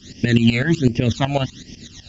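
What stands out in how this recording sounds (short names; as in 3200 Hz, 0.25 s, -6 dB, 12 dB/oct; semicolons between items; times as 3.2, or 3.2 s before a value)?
phasing stages 12, 1.3 Hz, lowest notch 320–1300 Hz; tremolo saw up 8 Hz, depth 80%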